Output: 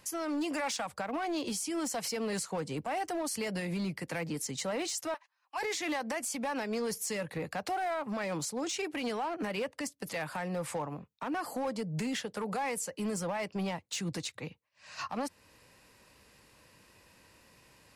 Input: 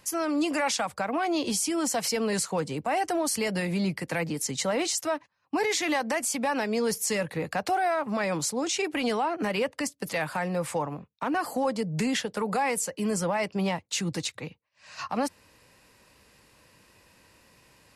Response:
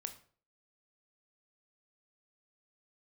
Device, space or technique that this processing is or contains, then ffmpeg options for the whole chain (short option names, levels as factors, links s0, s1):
limiter into clipper: -filter_complex "[0:a]asettb=1/sr,asplit=3[s0][s1][s2];[s0]atrim=end=5.144[s3];[s1]atrim=start=5.14:end=5.63,asetpts=PTS-STARTPTS,afade=t=in:d=0.004:c=qsin,afade=t=out:st=0.486:d=0.004:c=qsin,highpass=f=740:w=0.5412,highpass=f=740:w=1.3066[s4];[s2]atrim=start=5.626[s5];[s3][s4]acrossfade=d=0.004:c1=hsin:c2=qsin[s6];[s6][s5]acrossfade=d=0.004:c1=qsin:c2=hsin,alimiter=limit=0.0631:level=0:latency=1:release=284,asoftclip=type=hard:threshold=0.0447,volume=0.794"